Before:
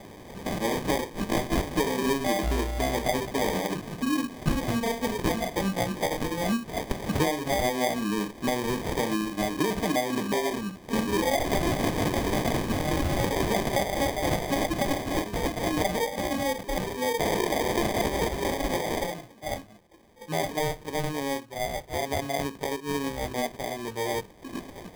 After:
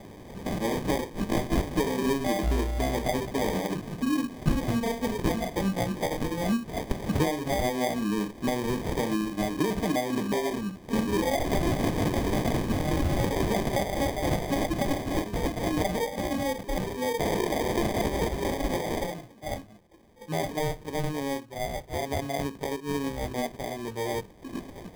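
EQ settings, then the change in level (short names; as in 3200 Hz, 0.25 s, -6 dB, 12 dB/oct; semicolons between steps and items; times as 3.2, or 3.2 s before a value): low shelf 450 Hz +5.5 dB; -3.5 dB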